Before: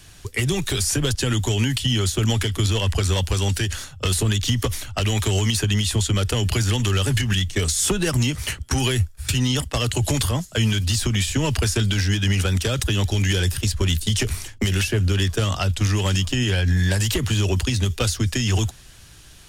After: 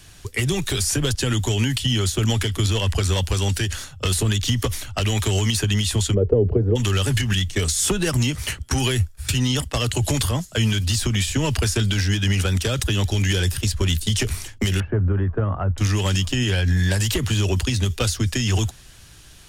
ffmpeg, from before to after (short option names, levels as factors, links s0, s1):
-filter_complex "[0:a]asplit=3[s0][s1][s2];[s0]afade=t=out:st=6.13:d=0.02[s3];[s1]lowpass=f=450:t=q:w=5.1,afade=t=in:st=6.13:d=0.02,afade=t=out:st=6.75:d=0.02[s4];[s2]afade=t=in:st=6.75:d=0.02[s5];[s3][s4][s5]amix=inputs=3:normalize=0,asettb=1/sr,asplit=3[s6][s7][s8];[s6]atrim=end=14.804[s9];[s7]atrim=start=14.8:end=15.78,asetpts=PTS-STARTPTS,afade=t=in:d=0.004:c=qsin,afade=t=out:st=0.976:d=0.004:c=qsin,lowpass=f=1400:w=0.5412,lowpass=f=1400:w=1.3066[s10];[s8]atrim=start=15.776[s11];[s9][s10]acrossfade=d=0.004:c1=hsin:c2=qsin[s12];[s12][s11]acrossfade=d=0.004:c1=qsin:c2=hsin"